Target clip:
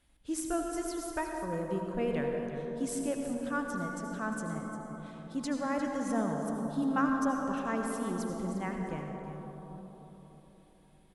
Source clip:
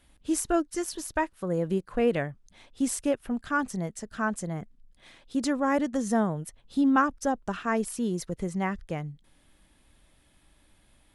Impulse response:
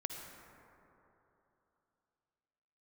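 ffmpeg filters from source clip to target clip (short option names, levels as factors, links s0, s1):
-filter_complex "[0:a]aecho=1:1:351:0.251[s0];[1:a]atrim=start_sample=2205,asetrate=32193,aresample=44100[s1];[s0][s1]afir=irnorm=-1:irlink=0,volume=0.447"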